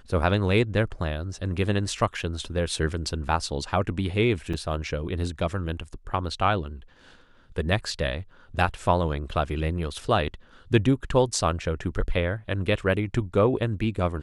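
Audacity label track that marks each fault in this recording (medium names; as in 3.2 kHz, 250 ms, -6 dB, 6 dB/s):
4.530000	4.530000	dropout 4.9 ms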